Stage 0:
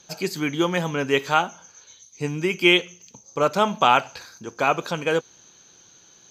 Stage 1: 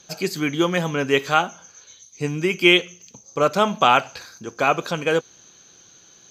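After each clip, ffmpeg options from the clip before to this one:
-af "bandreject=f=910:w=9.9,volume=2dB"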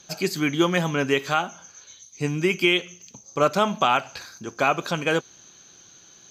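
-af "equalizer=f=480:t=o:w=0.21:g=-5.5,alimiter=limit=-7.5dB:level=0:latency=1:release=191"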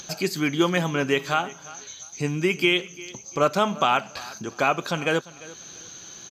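-filter_complex "[0:a]asplit=2[a][b];[b]acompressor=mode=upward:threshold=-23dB:ratio=2.5,volume=-1.5dB[c];[a][c]amix=inputs=2:normalize=0,aecho=1:1:347|694:0.106|0.0265,volume=-6dB"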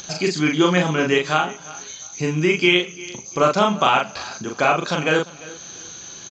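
-filter_complex "[0:a]asplit=2[a][b];[b]adelay=39,volume=-3dB[c];[a][c]amix=inputs=2:normalize=0,aresample=16000,aresample=44100,volume=3dB"

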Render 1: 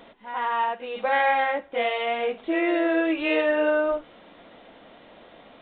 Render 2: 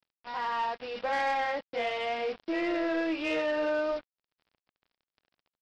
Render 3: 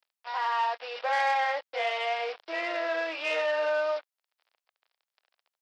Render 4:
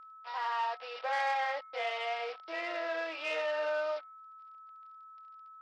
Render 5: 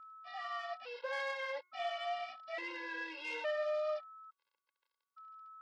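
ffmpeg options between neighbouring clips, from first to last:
-af "aresample=11025,acrusher=bits=5:mix=0:aa=0.5,aresample=44100,asoftclip=type=tanh:threshold=-19.5dB,volume=-4.5dB"
-af "highpass=f=550:w=0.5412,highpass=f=550:w=1.3066,volume=3.5dB"
-af "aeval=exprs='val(0)+0.00631*sin(2*PI*1300*n/s)':c=same,bandreject=f=361.3:t=h:w=4,bandreject=f=722.6:t=h:w=4,bandreject=f=1.0839k:t=h:w=4,bandreject=f=1.4452k:t=h:w=4,bandreject=f=1.8065k:t=h:w=4,bandreject=f=2.1678k:t=h:w=4,volume=-5.5dB"
-af "afftfilt=real='re*gt(sin(2*PI*0.58*pts/sr)*(1-2*mod(floor(b*sr/1024/280),2)),0)':imag='im*gt(sin(2*PI*0.58*pts/sr)*(1-2*mod(floor(b*sr/1024/280),2)),0)':win_size=1024:overlap=0.75,volume=-1.5dB"

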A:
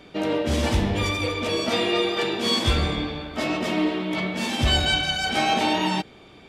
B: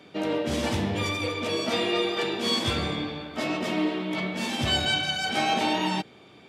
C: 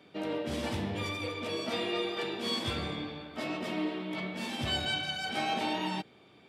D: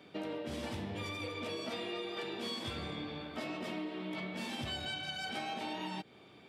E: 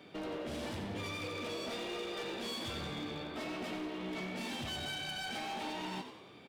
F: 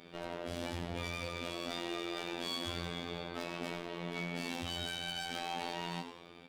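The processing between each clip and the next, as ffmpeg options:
-af "highpass=f=93:w=0.5412,highpass=f=93:w=1.3066,volume=-3dB"
-af "equalizer=f=6.5k:w=2.8:g=-4.5,volume=-7dB"
-af "acompressor=threshold=-38dB:ratio=6,volume=1dB"
-filter_complex "[0:a]asoftclip=type=hard:threshold=-39dB,asplit=6[a][b][c][d][e][f];[b]adelay=92,afreqshift=66,volume=-9dB[g];[c]adelay=184,afreqshift=132,volume=-15.7dB[h];[d]adelay=276,afreqshift=198,volume=-22.5dB[i];[e]adelay=368,afreqshift=264,volume=-29.2dB[j];[f]adelay=460,afreqshift=330,volume=-36dB[k];[a][g][h][i][j][k]amix=inputs=6:normalize=0,volume=1.5dB"
-af "afftfilt=real='hypot(re,im)*cos(PI*b)':imag='0':win_size=2048:overlap=0.75,volume=4dB"

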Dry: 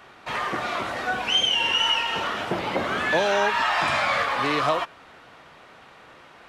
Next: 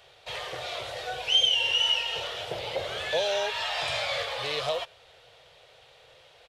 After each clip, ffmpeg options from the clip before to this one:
-af "firequalizer=gain_entry='entry(120,0);entry(230,-25);entry(480,3);entry(1100,-12);entry(3400,6);entry(5900,2)':delay=0.05:min_phase=1,volume=-4dB"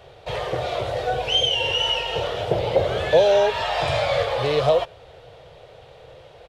-af "tiltshelf=f=970:g=9,volume=8.5dB"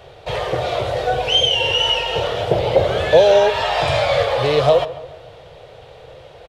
-filter_complex "[0:a]asplit=2[a][b];[b]adelay=143,lowpass=f=2.6k:p=1,volume=-15dB,asplit=2[c][d];[d]adelay=143,lowpass=f=2.6k:p=1,volume=0.46,asplit=2[e][f];[f]adelay=143,lowpass=f=2.6k:p=1,volume=0.46,asplit=2[g][h];[h]adelay=143,lowpass=f=2.6k:p=1,volume=0.46[i];[a][c][e][g][i]amix=inputs=5:normalize=0,volume=4.5dB"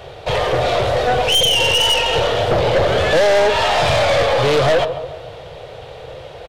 -af "aeval=exprs='(tanh(8.91*val(0)+0.3)-tanh(0.3))/8.91':c=same,volume=7.5dB"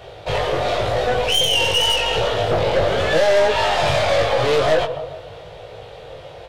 -af "flanger=delay=18:depth=2.6:speed=0.89"

